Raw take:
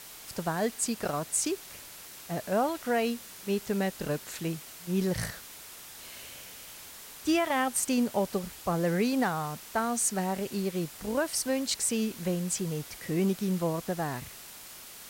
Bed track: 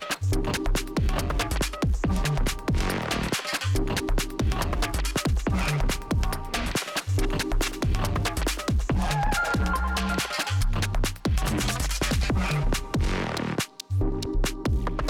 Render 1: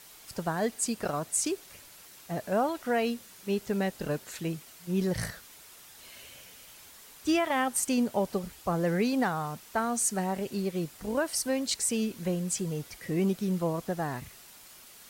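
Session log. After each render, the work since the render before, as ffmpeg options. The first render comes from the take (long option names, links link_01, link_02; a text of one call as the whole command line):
ffmpeg -i in.wav -af "afftdn=noise_reduction=6:noise_floor=-47" out.wav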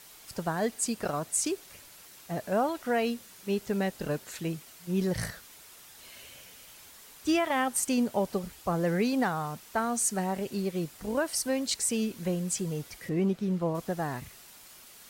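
ffmpeg -i in.wav -filter_complex "[0:a]asettb=1/sr,asplit=3[link_01][link_02][link_03];[link_01]atrim=end=13.094[link_04];[link_02]atrim=start=13.09:end=13.75,asetpts=PTS-STARTPTS,afade=type=in:duration=0.004:curve=qsin,afade=type=out:start_time=0.656:duration=0.004:curve=qsin,lowpass=frequency=2600:poles=1[link_05];[link_03]atrim=start=13.746[link_06];[link_04][link_05]acrossfade=duration=0.004:curve1=hsin:curve2=qsin[link_07];[link_07][link_06]acrossfade=duration=0.004:curve1=qsin:curve2=hsin" out.wav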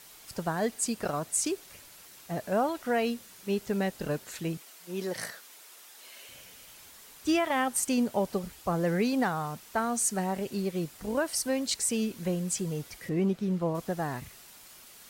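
ffmpeg -i in.wav -filter_complex "[0:a]asettb=1/sr,asplit=3[link_01][link_02][link_03];[link_01]atrim=end=4.574[link_04];[link_02]atrim=start=4.57:end=6.29,asetpts=PTS-STARTPTS,afade=type=in:duration=0.004:curve=qsin,afade=type=out:start_time=1.716:duration=0.004:curve=qsin,highpass=340[link_05];[link_03]atrim=start=6.286[link_06];[link_04][link_05]acrossfade=duration=0.004:curve1=hsin:curve2=qsin[link_07];[link_07][link_06]acrossfade=duration=0.004:curve1=qsin:curve2=hsin" out.wav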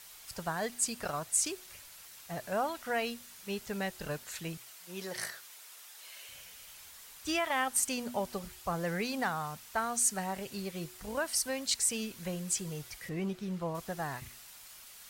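ffmpeg -i in.wav -af "equalizer=frequency=290:width=0.58:gain=-10,bandreject=frequency=121.6:width_type=h:width=4,bandreject=frequency=243.2:width_type=h:width=4,bandreject=frequency=364.8:width_type=h:width=4" out.wav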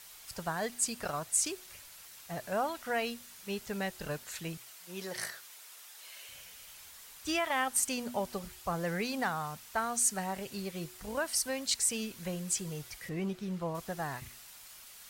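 ffmpeg -i in.wav -af anull out.wav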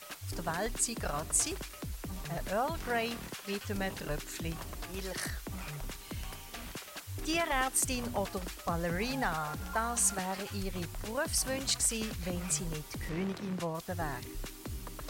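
ffmpeg -i in.wav -i bed.wav -filter_complex "[1:a]volume=-16.5dB[link_01];[0:a][link_01]amix=inputs=2:normalize=0" out.wav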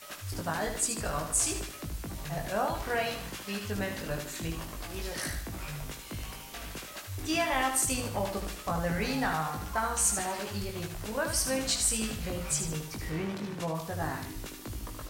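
ffmpeg -i in.wav -filter_complex "[0:a]asplit=2[link_01][link_02];[link_02]adelay=19,volume=-3.5dB[link_03];[link_01][link_03]amix=inputs=2:normalize=0,aecho=1:1:76|152|228|304|380:0.447|0.179|0.0715|0.0286|0.0114" out.wav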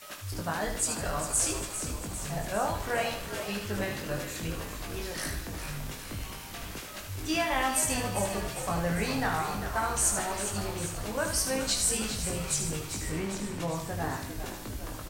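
ffmpeg -i in.wav -filter_complex "[0:a]asplit=2[link_01][link_02];[link_02]adelay=29,volume=-11dB[link_03];[link_01][link_03]amix=inputs=2:normalize=0,asplit=9[link_04][link_05][link_06][link_07][link_08][link_09][link_10][link_11][link_12];[link_05]adelay=401,afreqshift=-62,volume=-9.5dB[link_13];[link_06]adelay=802,afreqshift=-124,volume=-13.5dB[link_14];[link_07]adelay=1203,afreqshift=-186,volume=-17.5dB[link_15];[link_08]adelay=1604,afreqshift=-248,volume=-21.5dB[link_16];[link_09]adelay=2005,afreqshift=-310,volume=-25.6dB[link_17];[link_10]adelay=2406,afreqshift=-372,volume=-29.6dB[link_18];[link_11]adelay=2807,afreqshift=-434,volume=-33.6dB[link_19];[link_12]adelay=3208,afreqshift=-496,volume=-37.6dB[link_20];[link_04][link_13][link_14][link_15][link_16][link_17][link_18][link_19][link_20]amix=inputs=9:normalize=0" out.wav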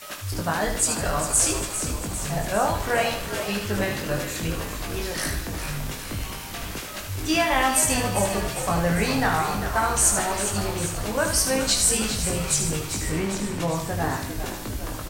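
ffmpeg -i in.wav -af "volume=7dB" out.wav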